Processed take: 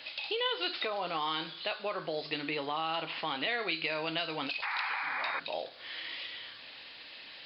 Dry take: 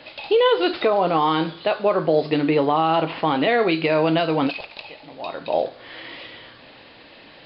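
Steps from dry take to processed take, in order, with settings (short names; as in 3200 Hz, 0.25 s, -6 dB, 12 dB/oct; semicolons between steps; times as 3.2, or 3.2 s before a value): tilt shelf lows -10 dB, about 1300 Hz; compressor 1.5:1, threshold -34 dBFS, peak gain reduction 7.5 dB; painted sound noise, 4.62–5.4, 750–2500 Hz -29 dBFS; gain -6 dB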